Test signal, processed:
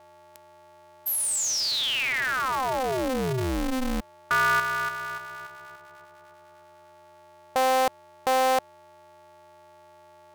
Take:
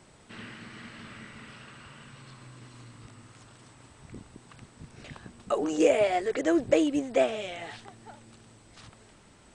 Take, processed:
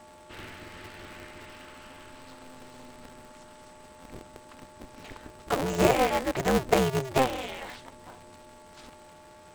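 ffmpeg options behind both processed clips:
ffmpeg -i in.wav -af "aeval=exprs='val(0)+0.00316*sin(2*PI*740*n/s)':channel_layout=same,aeval=exprs='val(0)*sgn(sin(2*PI*130*n/s))':channel_layout=same" out.wav

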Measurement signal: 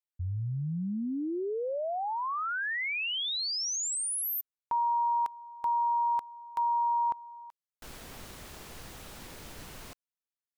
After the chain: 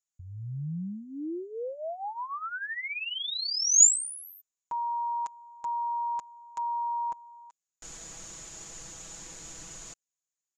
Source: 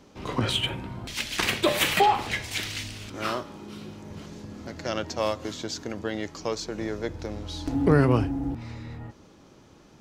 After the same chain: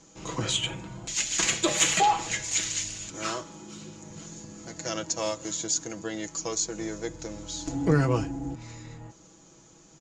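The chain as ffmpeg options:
ffmpeg -i in.wav -af "lowpass=frequency=6900:width_type=q:width=13,aecho=1:1:6.1:0.63,volume=-5dB" out.wav

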